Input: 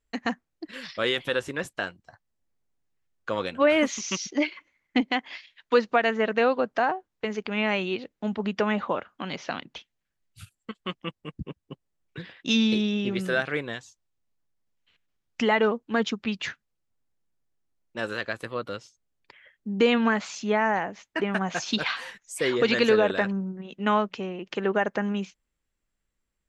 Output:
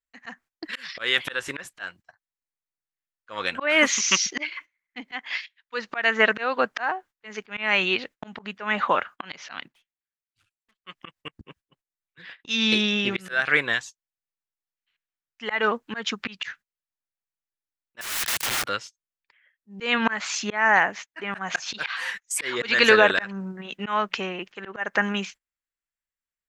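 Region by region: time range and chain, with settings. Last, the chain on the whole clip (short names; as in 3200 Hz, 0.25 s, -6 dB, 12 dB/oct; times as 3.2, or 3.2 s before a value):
9.68–10.84 air absorption 70 m + tube stage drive 51 dB, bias 0.6
18.01–18.64 sample leveller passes 5 + EQ curve 150 Hz 0 dB, 620 Hz -27 dB, 1200 Hz -16 dB, 3400 Hz 0 dB, 8600 Hz -7 dB + wrapped overs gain 30.5 dB
whole clip: gate -46 dBFS, range -21 dB; EQ curve 220 Hz 0 dB, 520 Hz +3 dB, 1700 Hz +15 dB, 3500 Hz +11 dB; auto swell 0.27 s; gain -1 dB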